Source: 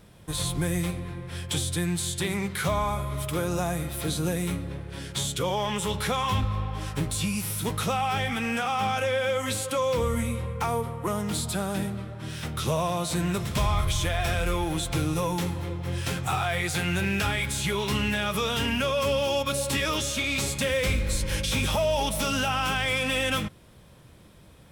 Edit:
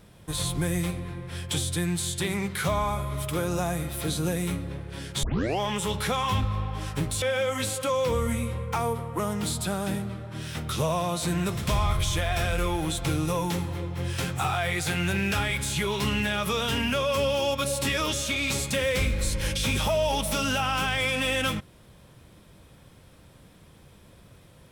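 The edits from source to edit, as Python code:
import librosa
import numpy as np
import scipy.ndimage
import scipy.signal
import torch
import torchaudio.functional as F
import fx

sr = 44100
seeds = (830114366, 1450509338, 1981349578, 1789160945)

y = fx.edit(x, sr, fx.tape_start(start_s=5.23, length_s=0.37),
    fx.cut(start_s=7.22, length_s=1.88), tone=tone)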